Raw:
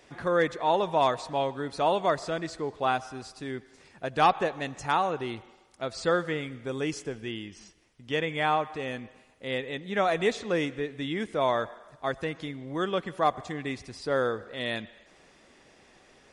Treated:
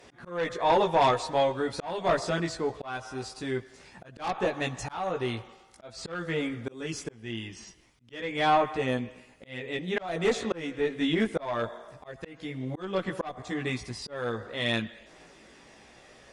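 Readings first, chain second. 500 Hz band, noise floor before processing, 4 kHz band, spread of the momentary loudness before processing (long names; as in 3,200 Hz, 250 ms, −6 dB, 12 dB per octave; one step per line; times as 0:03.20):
−1.0 dB, −59 dBFS, +0.5 dB, 13 LU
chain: multi-voice chorus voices 2, 0.23 Hz, delay 17 ms, depth 1.2 ms
harmonic generator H 5 −12 dB, 6 −22 dB, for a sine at −11.5 dBFS
volume swells 392 ms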